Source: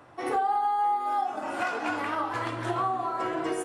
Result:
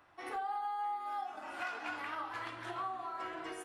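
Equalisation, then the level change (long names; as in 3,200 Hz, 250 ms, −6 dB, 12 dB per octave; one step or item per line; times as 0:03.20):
octave-band graphic EQ 125/250/500/1,000/8,000 Hz −12/−7/−9/−3/−7 dB
−6.0 dB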